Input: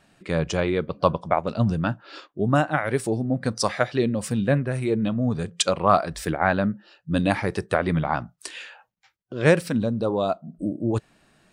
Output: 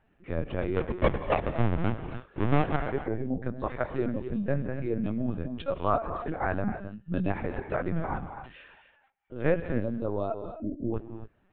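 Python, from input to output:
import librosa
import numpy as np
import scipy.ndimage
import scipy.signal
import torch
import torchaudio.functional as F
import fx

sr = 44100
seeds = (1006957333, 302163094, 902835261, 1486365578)

y = fx.halfwave_hold(x, sr, at=(0.75, 2.75), fade=0.02)
y = fx.air_absorb(y, sr, metres=500.0)
y = fx.rev_gated(y, sr, seeds[0], gate_ms=300, shape='rising', drr_db=8.0)
y = fx.lpc_vocoder(y, sr, seeds[1], excitation='pitch_kept', order=16)
y = F.gain(torch.from_numpy(y), -6.0).numpy()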